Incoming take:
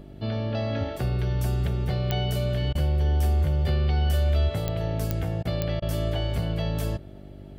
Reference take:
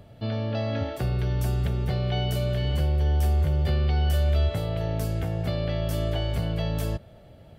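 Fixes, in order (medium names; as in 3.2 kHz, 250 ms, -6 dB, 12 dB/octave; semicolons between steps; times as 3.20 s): de-click; de-hum 49.2 Hz, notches 8; interpolate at 2.73/5.43/5.80 s, 20 ms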